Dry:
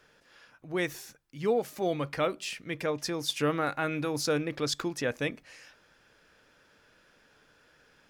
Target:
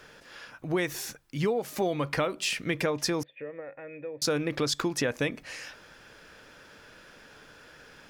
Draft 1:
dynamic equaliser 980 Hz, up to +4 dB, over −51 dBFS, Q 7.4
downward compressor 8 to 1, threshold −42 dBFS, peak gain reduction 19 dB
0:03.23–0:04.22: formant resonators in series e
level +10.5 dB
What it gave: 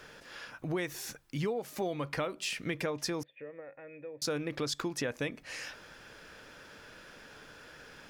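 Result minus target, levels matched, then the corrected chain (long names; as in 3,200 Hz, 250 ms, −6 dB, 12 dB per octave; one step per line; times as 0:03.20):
downward compressor: peak gain reduction +6 dB
dynamic equaliser 980 Hz, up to +4 dB, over −51 dBFS, Q 7.4
downward compressor 8 to 1, threshold −35 dBFS, peak gain reduction 13 dB
0:03.23–0:04.22: formant resonators in series e
level +10.5 dB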